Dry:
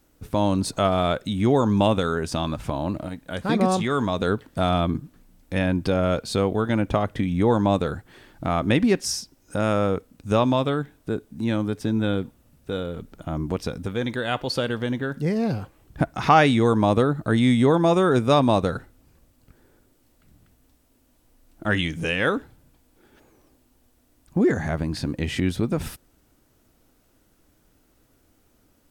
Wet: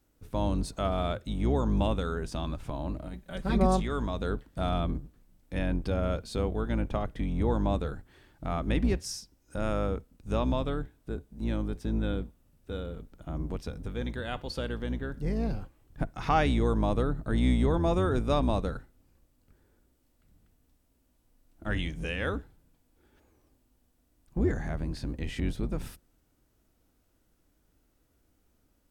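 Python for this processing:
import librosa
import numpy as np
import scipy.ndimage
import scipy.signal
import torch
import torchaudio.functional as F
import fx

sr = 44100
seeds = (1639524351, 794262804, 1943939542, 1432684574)

y = fx.octave_divider(x, sr, octaves=2, level_db=2.0)
y = fx.hpss(y, sr, part='percussive', gain_db=-3)
y = fx.comb(y, sr, ms=5.2, depth=0.88, at=(3.13, 3.8))
y = y * 10.0 ** (-8.5 / 20.0)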